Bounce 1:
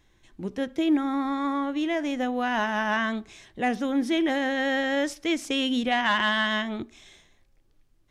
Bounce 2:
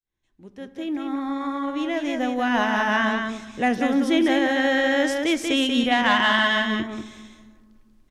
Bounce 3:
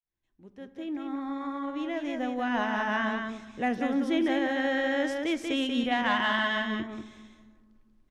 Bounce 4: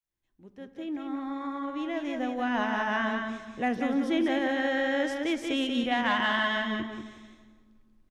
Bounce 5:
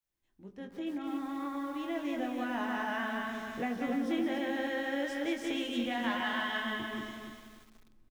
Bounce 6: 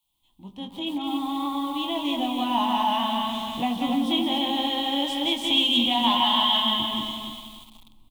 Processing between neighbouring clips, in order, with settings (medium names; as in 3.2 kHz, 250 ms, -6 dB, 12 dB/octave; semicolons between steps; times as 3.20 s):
fade-in on the opening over 2.65 s; delay 187 ms -5 dB; on a send at -14 dB: reverberation RT60 1.8 s, pre-delay 6 ms; on the sum: trim +3.5 dB
treble shelf 4.3 kHz -8 dB; trim -6.5 dB
feedback delay 170 ms, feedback 37%, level -13 dB
compression 2.5:1, threshold -36 dBFS, peak gain reduction 9.5 dB; doubling 21 ms -5.5 dB; bit-crushed delay 289 ms, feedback 35%, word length 9-bit, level -6 dB
FFT filter 290 Hz 0 dB, 430 Hz -14 dB, 960 Hz +10 dB, 1.6 kHz -20 dB, 3.3 kHz +15 dB, 5.4 kHz -4 dB, 8.7 kHz +5 dB; trim +8.5 dB